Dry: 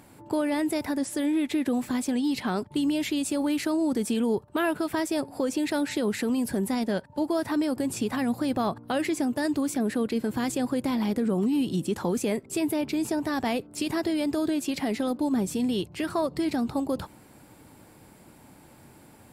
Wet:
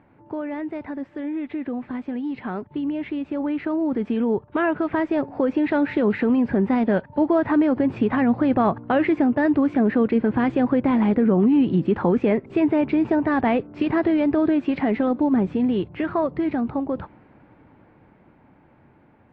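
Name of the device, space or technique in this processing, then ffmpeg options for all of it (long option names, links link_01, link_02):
action camera in a waterproof case: -filter_complex "[0:a]asettb=1/sr,asplit=3[link_01][link_02][link_03];[link_01]atrim=end=2.844[link_04];[link_02]atrim=start=2.84:end=3.71,asetpts=PTS-STARTPTS,afade=type=in:duration=0.004:curve=qsin,afade=type=out:start_time=0.866:duration=0.004:curve=qsin,highshelf=frequency=7000:gain=-10.5[link_05];[link_03]atrim=start=3.706[link_06];[link_04][link_05]acrossfade=duration=0.004:curve1=hsin:curve2=qsin[link_07];[link_07][link_06]acrossfade=duration=0.004:curve1=qsin:curve2=hsin,lowpass=frequency=2300:width=0.5412,lowpass=frequency=2300:width=1.3066,dynaudnorm=framelen=800:gausssize=11:maxgain=11dB,volume=-3dB" -ar 24000 -c:a aac -b:a 48k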